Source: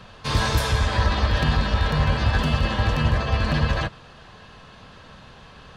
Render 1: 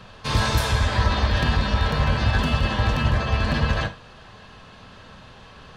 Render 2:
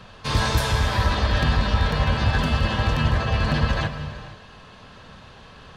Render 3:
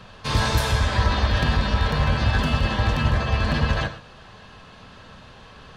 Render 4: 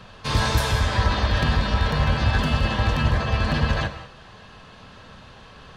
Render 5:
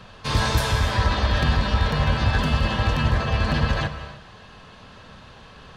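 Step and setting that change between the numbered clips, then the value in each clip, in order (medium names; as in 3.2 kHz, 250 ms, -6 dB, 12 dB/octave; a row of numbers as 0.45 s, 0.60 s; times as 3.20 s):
gated-style reverb, gate: 90 ms, 520 ms, 150 ms, 230 ms, 340 ms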